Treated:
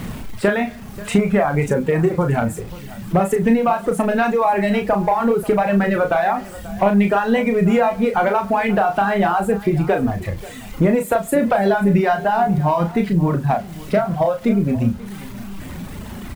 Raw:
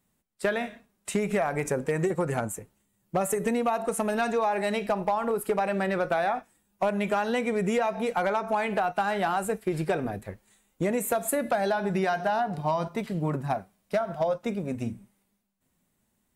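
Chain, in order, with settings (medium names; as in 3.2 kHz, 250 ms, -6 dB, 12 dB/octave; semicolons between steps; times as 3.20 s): jump at every zero crossing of -37.5 dBFS; reverb removal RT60 1.5 s; tone controls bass +7 dB, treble -13 dB; in parallel at +2 dB: compression 16:1, threshold -34 dBFS, peak gain reduction 17 dB; on the sum: bit crusher 9-bit; doubling 35 ms -6.5 dB; delay 536 ms -18.5 dB; on a send at -19.5 dB: reverberation RT60 0.80 s, pre-delay 6 ms; on the sum: trim +5.5 dB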